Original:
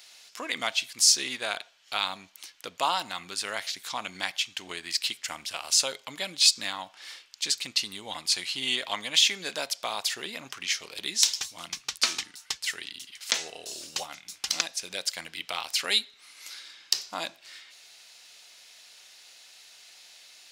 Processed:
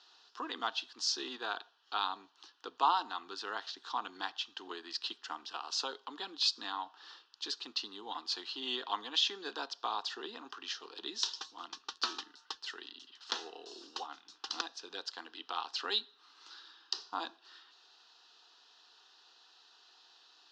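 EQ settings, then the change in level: LPF 6200 Hz 24 dB/oct; three-band isolator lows -20 dB, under 220 Hz, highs -23 dB, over 4200 Hz; fixed phaser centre 590 Hz, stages 6; 0.0 dB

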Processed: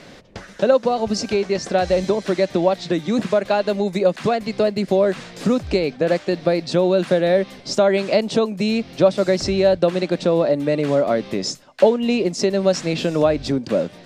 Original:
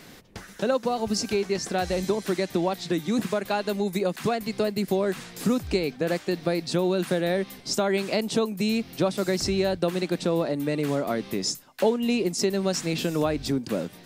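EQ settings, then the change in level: LPF 5900 Hz 12 dB/oct; bell 580 Hz +8 dB 0.39 oct; +4.5 dB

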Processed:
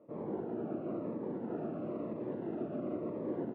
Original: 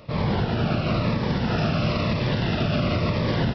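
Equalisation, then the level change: ladder band-pass 380 Hz, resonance 50%; air absorption 190 m; 0.0 dB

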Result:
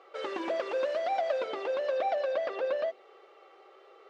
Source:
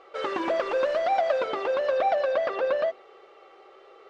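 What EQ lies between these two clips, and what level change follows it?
HPF 250 Hz 12 dB/oct; dynamic EQ 1200 Hz, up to -5 dB, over -40 dBFS, Q 1.2; -4.0 dB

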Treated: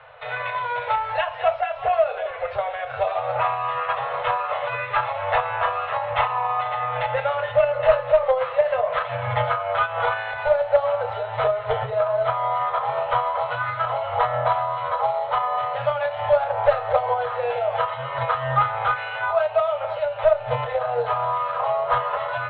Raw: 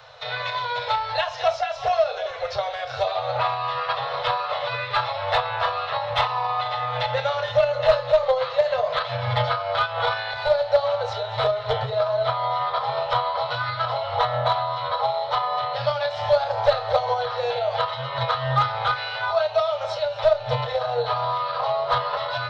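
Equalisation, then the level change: steep low-pass 2800 Hz 36 dB/oct; bell 160 Hz -5 dB 1.7 oct; +1.5 dB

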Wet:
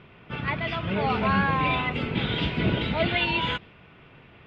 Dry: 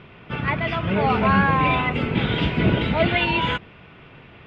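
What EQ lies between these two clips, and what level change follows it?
dynamic EQ 4100 Hz, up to +6 dB, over -42 dBFS, Q 1.3; -5.5 dB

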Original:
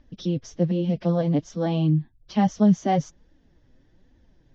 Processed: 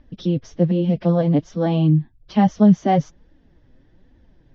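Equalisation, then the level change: air absorption 130 m; +5.0 dB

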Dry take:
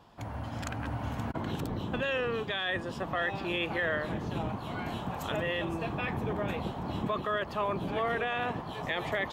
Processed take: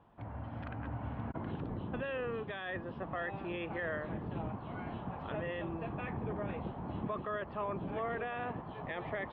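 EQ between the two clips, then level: LPF 4000 Hz 12 dB/oct; air absorption 450 m; -4.5 dB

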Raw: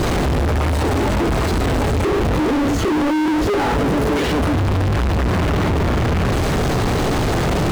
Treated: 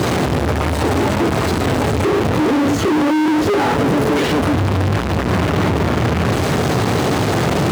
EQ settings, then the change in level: HPF 85 Hz 24 dB/oct; +2.5 dB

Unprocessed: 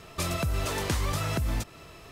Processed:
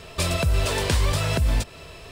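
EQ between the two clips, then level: thirty-one-band EQ 125 Hz -7 dB, 200 Hz -7 dB, 315 Hz -9 dB, 800 Hz -5 dB, 1250 Hz -8 dB, 2000 Hz -4 dB, 6300 Hz -5 dB, 12500 Hz -11 dB; +8.5 dB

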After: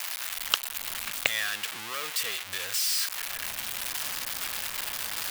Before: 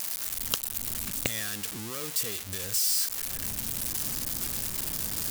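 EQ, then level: three-band isolator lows -19 dB, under 600 Hz, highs -18 dB, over 3300 Hz; high shelf 2500 Hz +9 dB; +6.0 dB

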